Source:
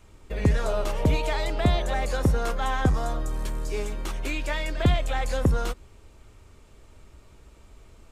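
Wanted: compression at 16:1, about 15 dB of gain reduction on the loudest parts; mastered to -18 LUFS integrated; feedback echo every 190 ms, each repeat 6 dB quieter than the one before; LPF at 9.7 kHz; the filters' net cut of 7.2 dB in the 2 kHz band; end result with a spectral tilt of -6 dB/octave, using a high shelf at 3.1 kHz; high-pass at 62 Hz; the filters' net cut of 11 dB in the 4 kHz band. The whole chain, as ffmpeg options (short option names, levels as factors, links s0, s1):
-af "highpass=62,lowpass=9700,equalizer=f=2000:t=o:g=-5,highshelf=f=3100:g=-8,equalizer=f=4000:t=o:g=-6.5,acompressor=threshold=0.0251:ratio=16,aecho=1:1:190|380|570|760|950|1140:0.501|0.251|0.125|0.0626|0.0313|0.0157,volume=9.44"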